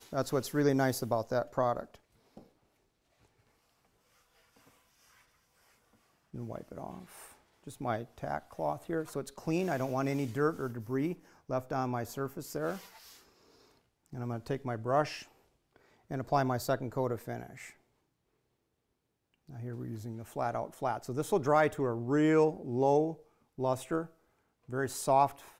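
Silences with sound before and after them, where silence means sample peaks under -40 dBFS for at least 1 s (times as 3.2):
2.38–6.34
12.79–14.13
17.66–19.5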